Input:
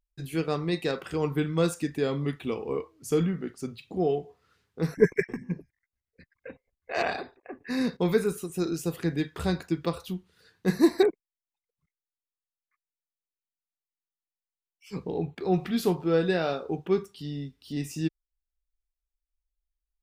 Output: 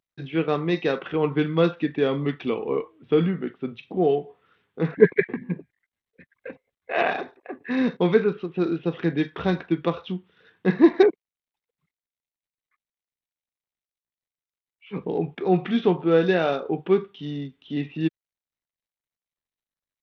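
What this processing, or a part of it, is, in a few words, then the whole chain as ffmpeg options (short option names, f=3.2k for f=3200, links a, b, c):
Bluetooth headset: -af "highpass=160,aresample=8000,aresample=44100,volume=5.5dB" -ar 32000 -c:a sbc -b:a 64k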